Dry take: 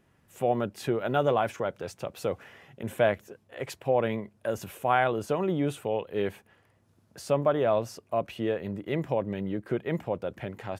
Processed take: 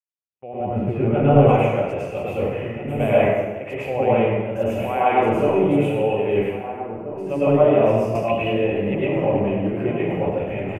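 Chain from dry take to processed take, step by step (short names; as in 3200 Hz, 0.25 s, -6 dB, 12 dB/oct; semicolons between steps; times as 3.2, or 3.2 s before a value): opening faded in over 1.29 s; transient shaper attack 0 dB, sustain +7 dB; 0.6–1.39 tone controls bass +12 dB, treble -14 dB; 4.68–5.12 elliptic high-pass 170 Hz; outdoor echo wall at 280 m, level -11 dB; gate -44 dBFS, range -37 dB; EQ curve 780 Hz 0 dB, 1600 Hz -9 dB, 2600 Hz +6 dB, 4000 Hz -21 dB, 9800 Hz -16 dB; plate-style reverb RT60 1.2 s, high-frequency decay 0.75×, pre-delay 90 ms, DRR -9.5 dB; 8.15–9.09 three-band squash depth 70%; gain -2 dB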